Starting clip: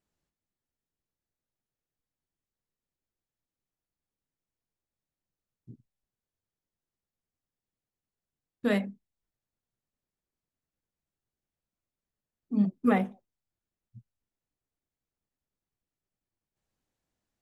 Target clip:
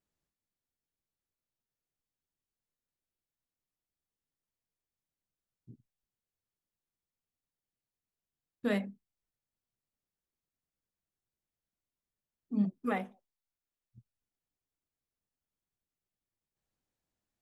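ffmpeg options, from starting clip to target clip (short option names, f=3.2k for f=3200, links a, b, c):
-filter_complex "[0:a]asettb=1/sr,asplit=3[a][b][c];[a]atrim=end=12.834[d];[b]atrim=start=12.83:end=13.98,asetpts=PTS-STARTPTS,afade=t=in:d=0.004:c=qsin,afade=t=out:st=1.146:d=0.004:c=qsin,equalizer=f=110:w=0.32:g=-8.5[e];[c]atrim=start=13.976[f];[d][e]acrossfade=d=0.004:c1=hsin:c2=qsin[g];[g][f]acrossfade=d=0.004:c1=qsin:c2=hsin,volume=-4.5dB"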